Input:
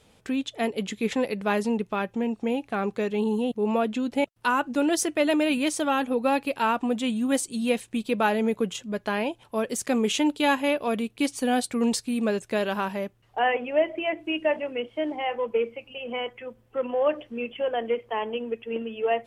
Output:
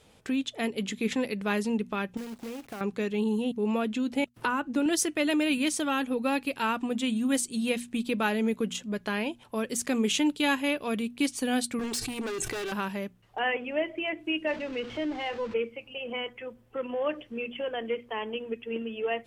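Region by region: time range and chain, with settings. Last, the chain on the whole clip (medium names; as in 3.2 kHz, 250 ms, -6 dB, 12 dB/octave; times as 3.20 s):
2.17–2.81 s: self-modulated delay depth 0.11 ms + companded quantiser 4-bit + compression 4:1, threshold -36 dBFS
4.34–4.86 s: treble shelf 2.2 kHz -8.5 dB + three bands compressed up and down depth 70%
11.79–12.72 s: comb 2.6 ms, depth 70% + hard clipper -29 dBFS + decay stretcher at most 26 dB/s
14.47–15.54 s: jump at every zero crossing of -34 dBFS + distance through air 150 m
whole clip: hum notches 60/120/180/240 Hz; dynamic bell 700 Hz, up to -8 dB, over -38 dBFS, Q 0.93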